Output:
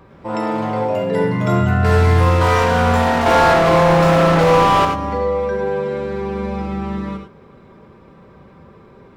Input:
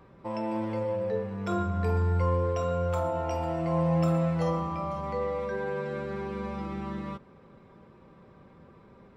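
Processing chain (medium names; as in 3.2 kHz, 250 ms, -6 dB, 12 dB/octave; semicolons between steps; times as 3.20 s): 3.26–4.85 s: overdrive pedal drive 42 dB, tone 1.4 kHz, clips at -15.5 dBFS; gated-style reverb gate 120 ms rising, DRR 4.5 dB; ever faster or slower copies 108 ms, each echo +6 st, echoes 2, each echo -6 dB; trim +8.5 dB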